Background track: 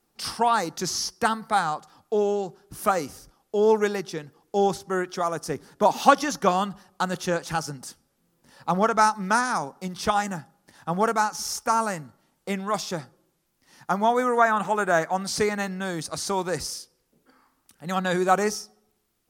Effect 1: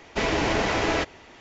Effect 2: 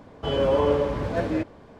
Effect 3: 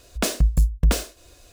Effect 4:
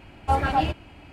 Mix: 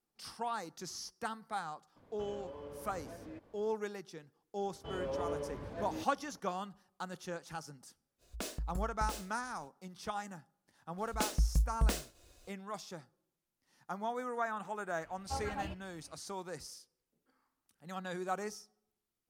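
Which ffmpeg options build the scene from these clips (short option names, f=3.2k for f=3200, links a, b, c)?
-filter_complex "[2:a]asplit=2[a][b];[3:a]asplit=2[c][d];[0:a]volume=-16.5dB[e];[a]acompressor=threshold=-26dB:ratio=5:attack=0.13:release=281:knee=1:detection=peak[f];[c]acompressor=threshold=-19dB:ratio=6:attack=3.2:release=140:knee=1:detection=peak[g];[f]atrim=end=1.79,asetpts=PTS-STARTPTS,volume=-16dB,afade=t=in:d=0.004:c=hsin,afade=t=out:st=1.786:d=0.004:c=hsin,adelay=1960[h];[b]atrim=end=1.79,asetpts=PTS-STARTPTS,volume=-17dB,afade=t=in:d=0.004:c=hsin,afade=t=out:st=1.786:d=0.004:c=hsin,adelay=203301S[i];[g]atrim=end=1.52,asetpts=PTS-STARTPTS,volume=-15.5dB,afade=t=in:d=0.05,afade=t=out:st=1.47:d=0.05,adelay=360738S[j];[d]atrim=end=1.52,asetpts=PTS-STARTPTS,volume=-11.5dB,afade=t=in:d=0.004:c=hsin,afade=t=out:st=1.516:d=0.004:c=hsin,adelay=484218S[k];[4:a]atrim=end=1.12,asetpts=PTS-STARTPTS,volume=-17.5dB,afade=t=in:d=0.004:c=hsin,afade=t=out:st=1.116:d=0.004:c=hsin,adelay=15020[l];[e][h][i][j][k][l]amix=inputs=6:normalize=0"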